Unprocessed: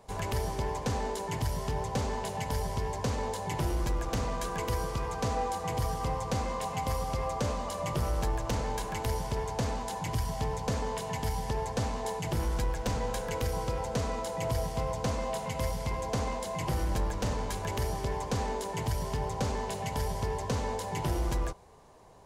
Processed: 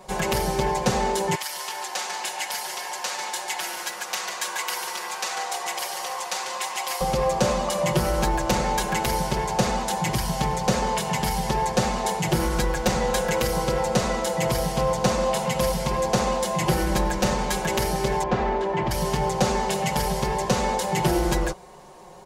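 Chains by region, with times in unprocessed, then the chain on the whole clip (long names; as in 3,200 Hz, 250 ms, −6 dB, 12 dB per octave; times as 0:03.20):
0:01.35–0:07.01: high-pass filter 1,300 Hz + echo with shifted repeats 145 ms, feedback 61%, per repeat −73 Hz, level −8 dB
0:18.23–0:18.91: low-pass filter 2,200 Hz + comb filter 3 ms, depth 32%
whole clip: low-shelf EQ 120 Hz −8.5 dB; comb filter 5.5 ms, depth 99%; level +9 dB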